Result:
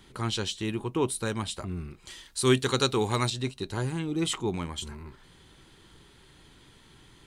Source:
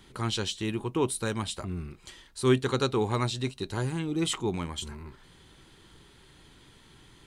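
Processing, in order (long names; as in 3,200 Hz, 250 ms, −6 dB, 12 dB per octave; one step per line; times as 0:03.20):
0:02.10–0:03.30: high-shelf EQ 2,600 Hz +9.5 dB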